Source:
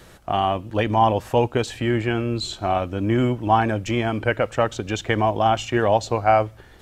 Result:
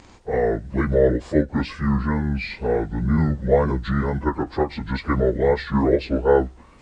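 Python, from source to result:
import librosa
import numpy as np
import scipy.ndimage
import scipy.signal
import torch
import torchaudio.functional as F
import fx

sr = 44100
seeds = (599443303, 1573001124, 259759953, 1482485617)

y = fx.pitch_bins(x, sr, semitones=-8.5)
y = fx.wow_flutter(y, sr, seeds[0], rate_hz=2.1, depth_cents=87.0)
y = fx.end_taper(y, sr, db_per_s=310.0)
y = y * librosa.db_to_amplitude(1.5)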